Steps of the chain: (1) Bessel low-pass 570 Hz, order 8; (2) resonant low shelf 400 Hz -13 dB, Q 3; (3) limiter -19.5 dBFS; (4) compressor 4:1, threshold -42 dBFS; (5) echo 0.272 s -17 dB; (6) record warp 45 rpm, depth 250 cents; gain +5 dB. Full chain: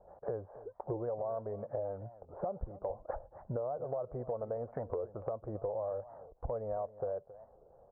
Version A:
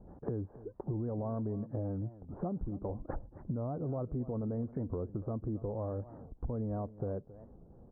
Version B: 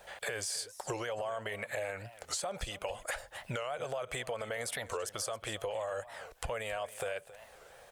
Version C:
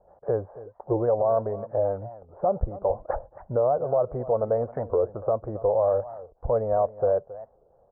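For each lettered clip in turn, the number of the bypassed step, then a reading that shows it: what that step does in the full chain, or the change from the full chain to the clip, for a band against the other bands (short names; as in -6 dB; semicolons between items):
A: 2, 250 Hz band +14.5 dB; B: 1, 1 kHz band +5.0 dB; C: 4, mean gain reduction 10.0 dB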